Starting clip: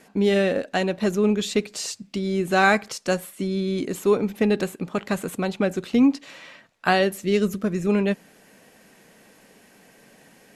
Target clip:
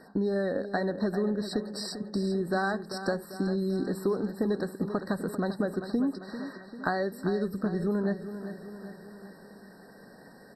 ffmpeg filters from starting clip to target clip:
ffmpeg -i in.wav -filter_complex "[0:a]acompressor=threshold=-28dB:ratio=5,highshelf=frequency=5700:gain=-9,asplit=2[link_01][link_02];[link_02]aecho=0:1:394|788|1182|1576|1970|2364:0.282|0.161|0.0916|0.0522|0.0298|0.017[link_03];[link_01][link_03]amix=inputs=2:normalize=0,afftfilt=real='re*eq(mod(floor(b*sr/1024/1900),2),0)':imag='im*eq(mod(floor(b*sr/1024/1900),2),0)':win_size=1024:overlap=0.75,volume=1.5dB" out.wav

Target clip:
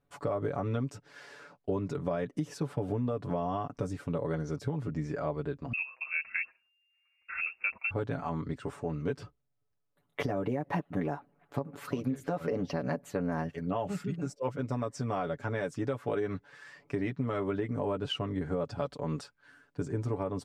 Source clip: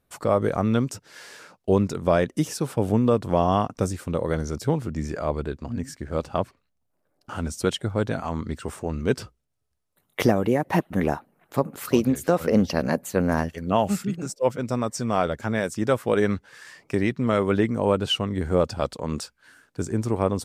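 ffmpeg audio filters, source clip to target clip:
ffmpeg -i in.wav -filter_complex "[0:a]aemphasis=mode=reproduction:type=75kf,aecho=1:1:7:0.75,alimiter=limit=-11dB:level=0:latency=1:release=127,acompressor=threshold=-23dB:ratio=4,asettb=1/sr,asplit=3[link_01][link_02][link_03];[link_01]atrim=end=5.734[link_04];[link_02]atrim=start=5.73:end=7.91,asetpts=PTS-STARTPTS,afade=type=in:duration=0.004:curve=qsin,afade=type=out:start_time=2.176:duration=0.004:curve=qsin,lowpass=frequency=2400:width_type=q:width=0.5098,lowpass=frequency=2400:width_type=q:width=0.6013,lowpass=frequency=2400:width_type=q:width=0.9,lowpass=frequency=2400:width_type=q:width=2.563,afreqshift=-2800[link_05];[link_03]atrim=start=7.906[link_06];[link_04][link_05]acrossfade=duration=0.004:curve1=hsin:curve2=qsin[link_07];[link_07][link_06]acrossfade=duration=0.004:curve1=qsin:curve2=hsin,volume=-5.5dB" out.wav

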